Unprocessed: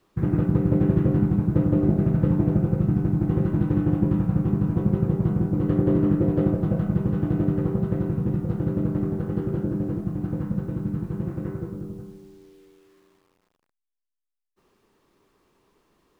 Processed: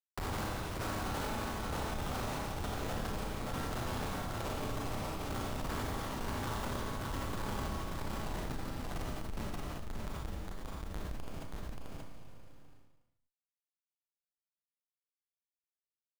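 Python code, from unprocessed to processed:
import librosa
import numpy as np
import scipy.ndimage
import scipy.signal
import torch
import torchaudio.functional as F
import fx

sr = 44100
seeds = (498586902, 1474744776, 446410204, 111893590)

p1 = fx.highpass(x, sr, hz=160.0, slope=6, at=(10.27, 10.84), fade=0.02)
p2 = fx.spec_gate(p1, sr, threshold_db=-30, keep='weak')
p3 = fx.schmitt(p2, sr, flips_db=-44.0)
p4 = fx.step_gate(p3, sr, bpm=133, pattern='.xxx...x', floor_db=-12.0, edge_ms=4.5)
p5 = p4 + fx.echo_single(p4, sr, ms=580, db=-6.0, dry=0)
p6 = fx.rev_schroeder(p5, sr, rt60_s=1.1, comb_ms=28, drr_db=-2.0)
p7 = fx.env_flatten(p6, sr, amount_pct=70)
y = p7 * librosa.db_to_amplitude(9.5)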